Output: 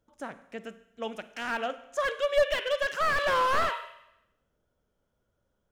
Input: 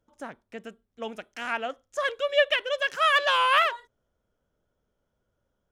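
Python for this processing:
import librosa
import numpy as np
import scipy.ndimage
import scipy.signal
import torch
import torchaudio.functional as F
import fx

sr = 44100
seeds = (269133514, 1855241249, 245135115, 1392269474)

y = fx.rev_schroeder(x, sr, rt60_s=0.84, comb_ms=33, drr_db=13.0)
y = fx.slew_limit(y, sr, full_power_hz=88.0)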